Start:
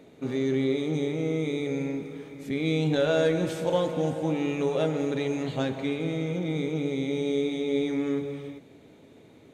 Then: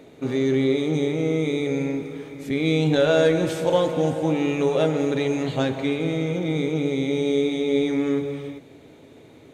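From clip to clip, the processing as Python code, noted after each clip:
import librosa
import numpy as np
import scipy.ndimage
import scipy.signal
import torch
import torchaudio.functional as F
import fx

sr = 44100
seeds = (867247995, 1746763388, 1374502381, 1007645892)

y = fx.peak_eq(x, sr, hz=200.0, db=-8.0, octaves=0.26)
y = y * 10.0 ** (5.5 / 20.0)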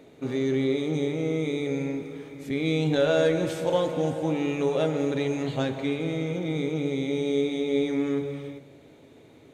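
y = fx.comb_fb(x, sr, f0_hz=140.0, decay_s=1.6, harmonics='all', damping=0.0, mix_pct=40)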